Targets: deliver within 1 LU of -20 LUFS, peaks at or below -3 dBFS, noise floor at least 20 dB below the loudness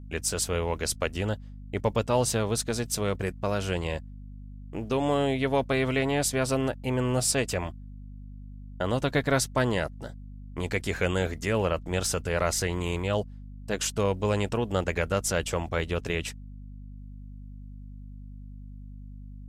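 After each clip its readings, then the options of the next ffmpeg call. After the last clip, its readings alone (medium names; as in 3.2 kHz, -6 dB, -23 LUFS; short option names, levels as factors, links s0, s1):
hum 50 Hz; highest harmonic 250 Hz; hum level -39 dBFS; loudness -28.0 LUFS; peak level -12.0 dBFS; loudness target -20.0 LUFS
-> -af "bandreject=f=50:t=h:w=4,bandreject=f=100:t=h:w=4,bandreject=f=150:t=h:w=4,bandreject=f=200:t=h:w=4,bandreject=f=250:t=h:w=4"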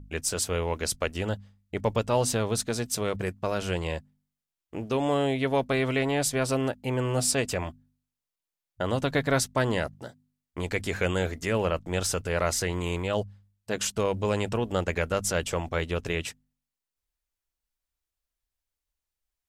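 hum not found; loudness -28.0 LUFS; peak level -11.5 dBFS; loudness target -20.0 LUFS
-> -af "volume=2.51"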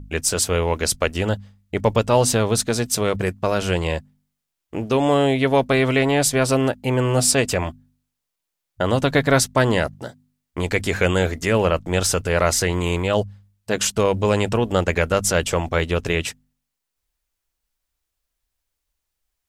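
loudness -20.0 LUFS; peak level -3.5 dBFS; noise floor -81 dBFS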